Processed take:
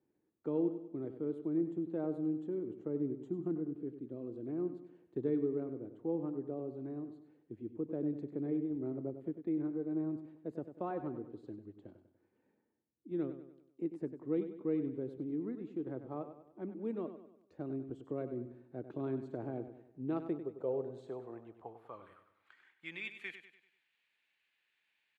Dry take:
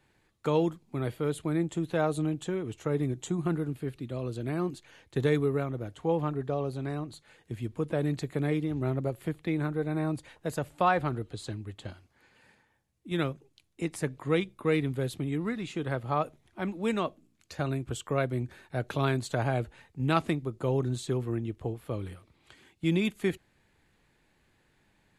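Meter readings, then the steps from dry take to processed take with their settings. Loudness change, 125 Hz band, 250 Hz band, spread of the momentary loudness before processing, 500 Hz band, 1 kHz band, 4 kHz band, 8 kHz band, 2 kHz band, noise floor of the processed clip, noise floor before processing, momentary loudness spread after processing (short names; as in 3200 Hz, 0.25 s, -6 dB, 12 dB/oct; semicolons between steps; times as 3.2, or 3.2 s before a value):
-8.0 dB, -16.0 dB, -5.5 dB, 9 LU, -8.0 dB, -17.0 dB, under -15 dB, under -30 dB, -15.0 dB, -81 dBFS, -70 dBFS, 14 LU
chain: band-pass sweep 320 Hz -> 2700 Hz, 19.94–23.52; feedback echo 97 ms, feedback 45%, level -10.5 dB; gain -3 dB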